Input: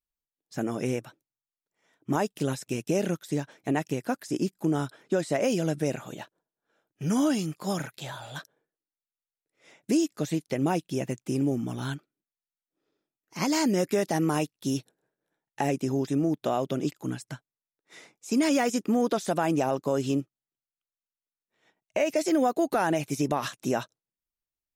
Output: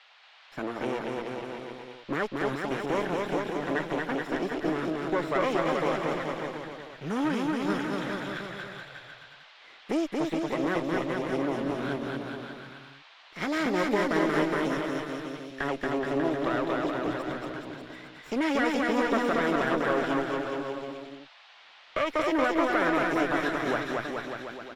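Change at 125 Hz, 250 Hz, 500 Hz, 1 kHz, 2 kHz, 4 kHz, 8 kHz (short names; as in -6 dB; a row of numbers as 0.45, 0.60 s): -6.5, -1.5, +0.5, +2.0, +7.0, +0.5, -11.0 dB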